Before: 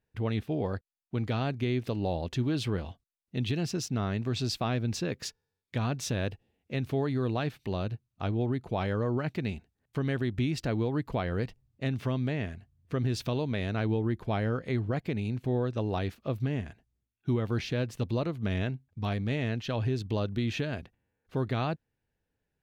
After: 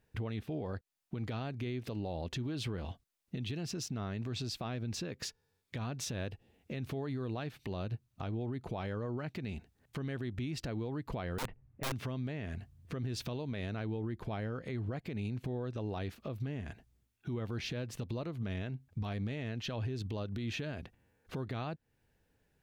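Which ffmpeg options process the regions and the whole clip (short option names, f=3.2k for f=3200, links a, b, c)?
-filter_complex "[0:a]asettb=1/sr,asplit=3[a][b][c];[a]atrim=end=11.384[d];[b]atrim=start=11.38:end=11.92,asetpts=PTS-STARTPTS,afade=t=in:d=0.004:c=qsin,afade=t=out:st=0.536:d=0.004:c=qsin,lowpass=f=2.2k:w=0.5412,lowpass=f=2.2k:w=1.3066,aeval=exprs='(mod(25.1*val(0)+1,2)-1)/25.1':c=same[e];[c]atrim=start=11.916[f];[d][e]acrossfade=d=0.004:c1=hsin:c2=qsin[g];[g][f]acrossfade=d=0.004:c1=qsin:c2=hsin,acompressor=threshold=-33dB:ratio=6,alimiter=level_in=14dB:limit=-24dB:level=0:latency=1:release=292,volume=-14dB,volume=8dB"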